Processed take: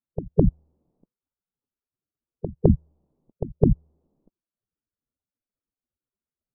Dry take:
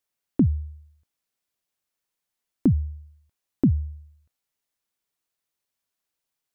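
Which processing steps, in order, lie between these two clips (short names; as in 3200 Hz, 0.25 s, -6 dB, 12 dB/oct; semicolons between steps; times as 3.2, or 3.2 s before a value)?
LPF 1000 Hz 24 dB/oct; spectral gate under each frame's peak -15 dB weak; low-pass opened by the level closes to 320 Hz, open at -18 dBFS; pre-echo 0.21 s -21 dB; maximiser +31.5 dB; gain -1 dB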